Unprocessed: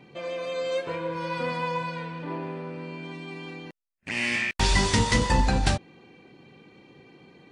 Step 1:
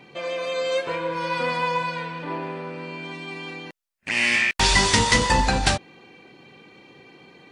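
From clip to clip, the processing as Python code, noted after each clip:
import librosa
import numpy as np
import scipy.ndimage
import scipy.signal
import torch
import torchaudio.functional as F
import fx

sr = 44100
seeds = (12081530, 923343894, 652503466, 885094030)

y = fx.low_shelf(x, sr, hz=420.0, db=-8.5)
y = F.gain(torch.from_numpy(y), 7.0).numpy()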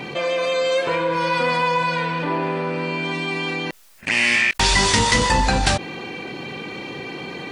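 y = fx.env_flatten(x, sr, amount_pct=50)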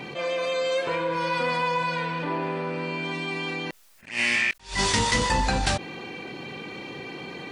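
y = fx.attack_slew(x, sr, db_per_s=170.0)
y = F.gain(torch.from_numpy(y), -5.5).numpy()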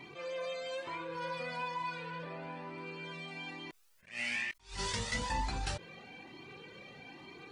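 y = fx.comb_cascade(x, sr, direction='rising', hz=1.1)
y = F.gain(torch.from_numpy(y), -9.0).numpy()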